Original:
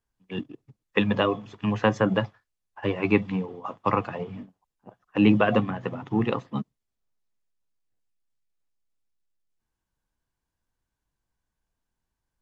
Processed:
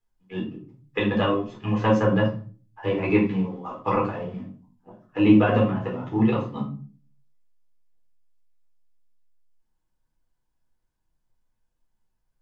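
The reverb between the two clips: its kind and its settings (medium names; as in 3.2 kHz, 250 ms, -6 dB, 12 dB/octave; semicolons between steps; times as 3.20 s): simulated room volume 250 m³, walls furnished, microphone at 4 m; trim -7 dB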